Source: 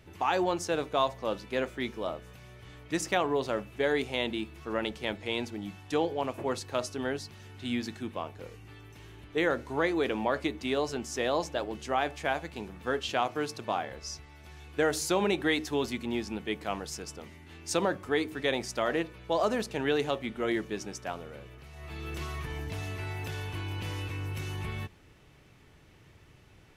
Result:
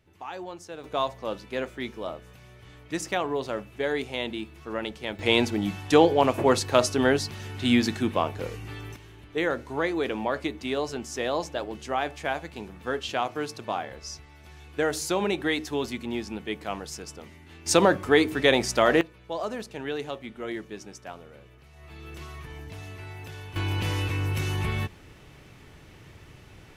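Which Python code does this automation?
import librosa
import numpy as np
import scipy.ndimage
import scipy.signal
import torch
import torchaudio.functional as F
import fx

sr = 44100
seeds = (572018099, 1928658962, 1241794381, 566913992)

y = fx.gain(x, sr, db=fx.steps((0.0, -10.0), (0.84, 0.0), (5.19, 11.0), (8.96, 1.0), (17.66, 9.0), (19.01, -4.0), (23.56, 8.0)))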